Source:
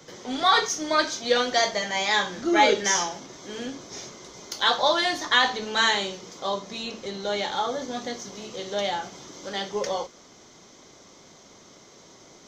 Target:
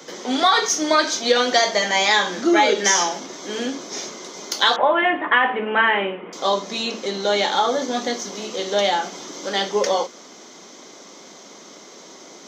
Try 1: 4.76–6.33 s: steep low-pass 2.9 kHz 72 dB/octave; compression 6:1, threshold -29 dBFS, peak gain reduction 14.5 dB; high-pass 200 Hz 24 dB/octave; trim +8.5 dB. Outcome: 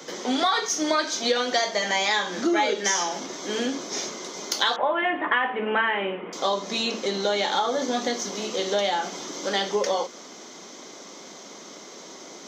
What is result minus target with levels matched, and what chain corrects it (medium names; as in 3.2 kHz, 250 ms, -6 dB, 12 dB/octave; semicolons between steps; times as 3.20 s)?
compression: peak gain reduction +6.5 dB
4.76–6.33 s: steep low-pass 2.9 kHz 72 dB/octave; compression 6:1, threshold -21 dBFS, peak gain reduction 8 dB; high-pass 200 Hz 24 dB/octave; trim +8.5 dB